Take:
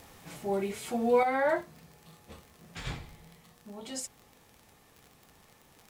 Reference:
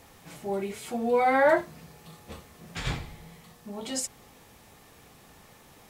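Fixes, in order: de-click; trim 0 dB, from 1.23 s +6.5 dB

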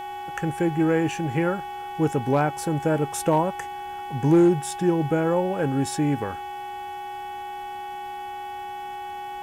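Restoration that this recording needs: clip repair -11.5 dBFS; de-hum 373.1 Hz, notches 9; band-stop 820 Hz, Q 30

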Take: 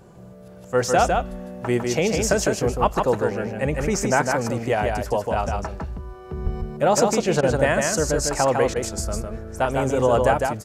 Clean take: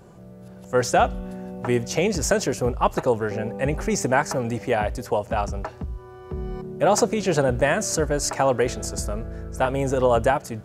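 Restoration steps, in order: 6.43–6.55 s: high-pass 140 Hz 24 dB/octave; interpolate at 7.41/8.74 s, 17 ms; inverse comb 154 ms -4 dB

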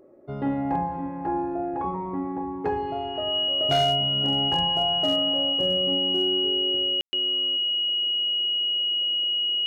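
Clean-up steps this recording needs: clip repair -16 dBFS; band-stop 2.9 kHz, Q 30; room tone fill 7.01–7.13 s; inverse comb 498 ms -20 dB

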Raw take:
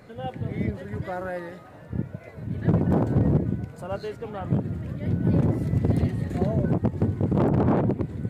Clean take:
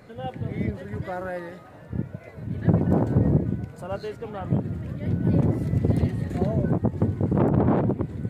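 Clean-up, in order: clip repair -14 dBFS

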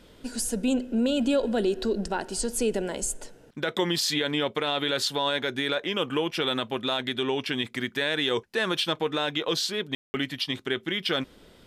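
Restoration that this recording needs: room tone fill 9.95–10.14 s

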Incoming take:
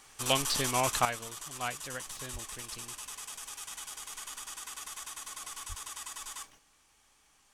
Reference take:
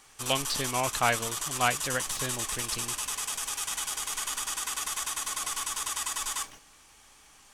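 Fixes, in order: de-plosive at 2.32/5.68 s; trim 0 dB, from 1.05 s +10 dB

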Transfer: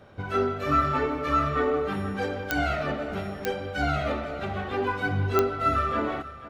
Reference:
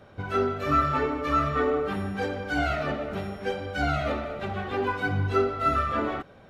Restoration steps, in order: de-click; inverse comb 488 ms -15.5 dB

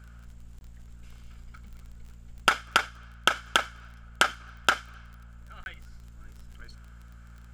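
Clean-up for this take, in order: de-click; de-hum 57.8 Hz, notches 4; interpolate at 0.59/5.64 s, 21 ms

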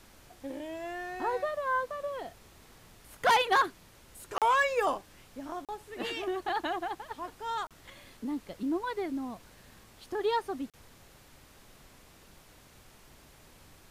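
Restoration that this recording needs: interpolate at 4.38/5.65/7.67/10.70 s, 37 ms; noise reduction 21 dB, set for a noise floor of -57 dBFS

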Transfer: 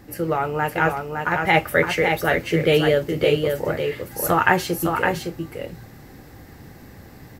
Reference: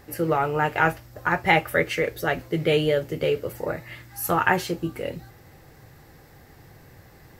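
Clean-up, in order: noise print and reduce 7 dB; inverse comb 561 ms -5 dB; gain correction -3.5 dB, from 1.54 s

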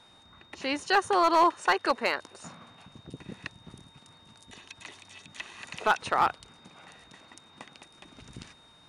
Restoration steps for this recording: clip repair -14.5 dBFS; band-stop 3.7 kHz, Q 30

